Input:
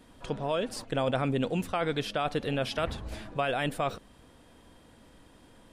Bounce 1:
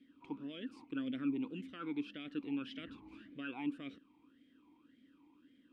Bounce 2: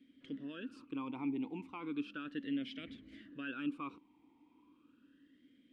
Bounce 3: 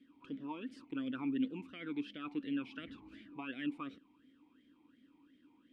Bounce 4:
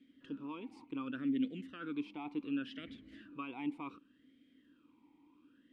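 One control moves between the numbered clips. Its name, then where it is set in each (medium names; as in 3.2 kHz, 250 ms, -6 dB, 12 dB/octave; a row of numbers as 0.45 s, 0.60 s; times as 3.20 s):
talking filter, rate: 1.8 Hz, 0.35 Hz, 2.8 Hz, 0.68 Hz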